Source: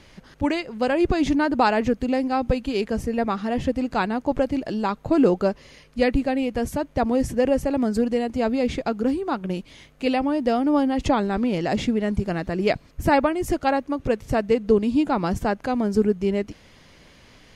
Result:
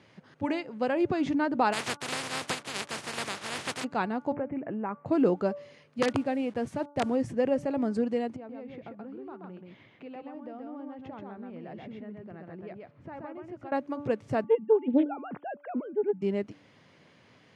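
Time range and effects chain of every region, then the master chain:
1.72–3.83 spectral contrast lowered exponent 0.12 + backlash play -36 dBFS
4.33–5.06 steep low-pass 2400 Hz 48 dB/oct + compressor 2:1, threshold -24 dBFS + mismatched tape noise reduction encoder only
6.02–7.16 level-crossing sampler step -41 dBFS + wrapped overs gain 11 dB
8.36–13.72 LPF 2500 Hz + compressor 3:1, threshold -39 dBFS + echo 0.13 s -3 dB
14.44–16.22 sine-wave speech + Doppler distortion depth 0.41 ms
whole clip: elliptic band-pass 110–9800 Hz; high shelf 4500 Hz -11.5 dB; de-hum 289.2 Hz, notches 5; gain -5.5 dB

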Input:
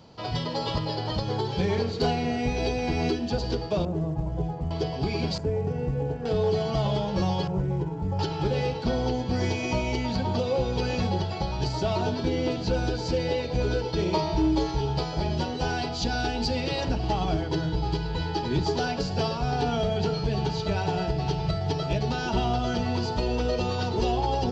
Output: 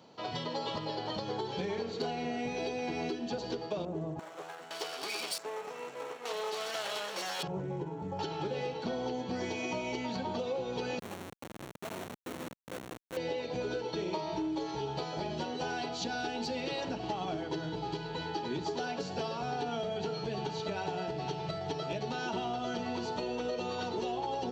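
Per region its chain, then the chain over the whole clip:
4.19–7.43 minimum comb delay 0.38 ms + HPF 600 Hz + high shelf 3300 Hz +11.5 dB
10.99–13.17 tube stage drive 31 dB, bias 0.5 + Schmitt trigger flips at -33 dBFS
whole clip: HPF 220 Hz 12 dB/oct; notch 4900 Hz, Q 7.1; compressor, threshold -28 dBFS; gain -3.5 dB

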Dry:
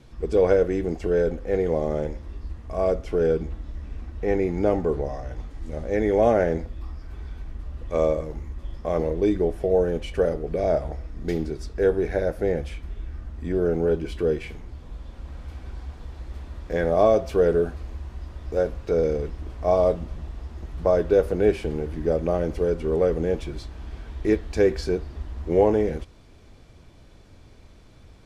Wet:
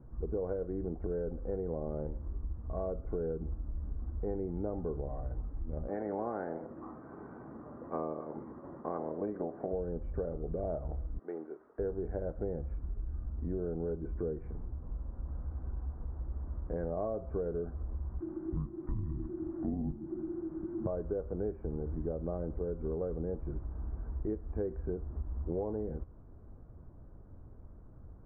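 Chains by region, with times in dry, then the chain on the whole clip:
5.87–9.72 spectral limiter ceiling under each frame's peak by 16 dB + HPF 270 Hz
11.19–11.79 Chebyshev high-pass 410 Hz + tilt +4 dB/oct
18.2–20.87 frequency shift -390 Hz + mismatched tape noise reduction encoder only
whole clip: steep low-pass 1400 Hz 36 dB/oct; low shelf 330 Hz +7.5 dB; compressor, threshold -24 dBFS; gain -8.5 dB

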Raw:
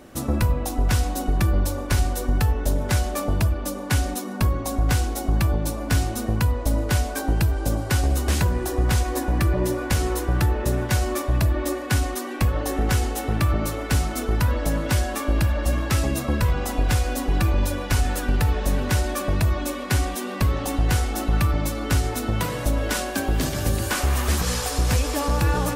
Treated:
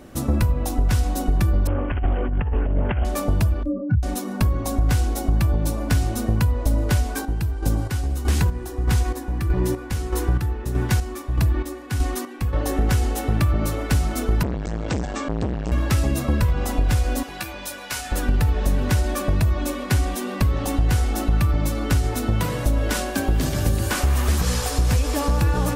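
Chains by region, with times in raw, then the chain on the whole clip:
1.67–3.05 negative-ratio compressor -22 dBFS, ratio -0.5 + brick-wall FIR low-pass 3100 Hz + Doppler distortion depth 0.38 ms
3.63–4.03 spectral contrast raised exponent 3.7 + doubler 27 ms -4 dB
7–12.53 chopper 1.6 Hz, depth 60%, duty 40% + notch 600 Hz, Q 5.5
14.43–15.72 brick-wall FIR low-pass 8400 Hz + core saturation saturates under 540 Hz
17.23–18.12 HPF 1500 Hz 6 dB/oct + doubler 15 ms -6 dB
whole clip: low shelf 260 Hz +5.5 dB; compressor, threshold -15 dBFS

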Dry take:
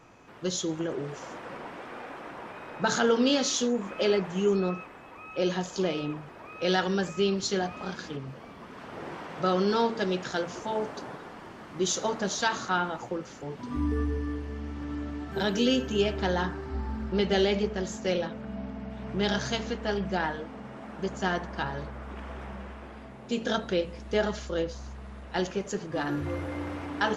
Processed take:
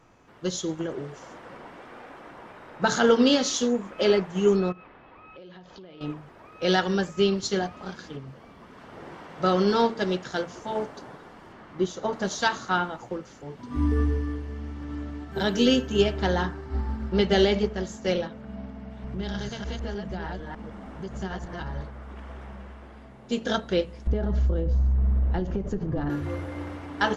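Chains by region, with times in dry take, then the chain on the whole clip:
4.72–6.01 LPF 4100 Hz 24 dB/oct + compressor 10:1, threshold -39 dBFS
11.52–12.13 LPF 1700 Hz 6 dB/oct + mismatched tape noise reduction encoder only
19.04–21.81 reverse delay 0.151 s, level -1.5 dB + low shelf 140 Hz +9.5 dB + compressor 2.5:1, threshold -33 dBFS
24.07–26.1 tilt -4.5 dB/oct + compressor, threshold -26 dBFS
whole clip: low shelf 73 Hz +7.5 dB; notch 2500 Hz, Q 21; upward expander 1.5:1, over -37 dBFS; gain +5 dB

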